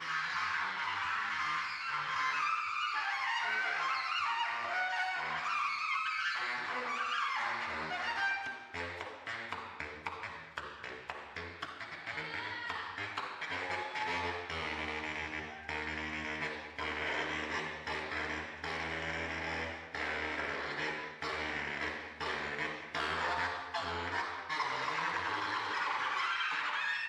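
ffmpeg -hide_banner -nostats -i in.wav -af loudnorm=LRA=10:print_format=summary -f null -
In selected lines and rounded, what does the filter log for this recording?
Input Integrated:    -35.8 LUFS
Input True Peak:     -20.4 dBTP
Input LRA:             5.7 LU
Input Threshold:     -45.8 LUFS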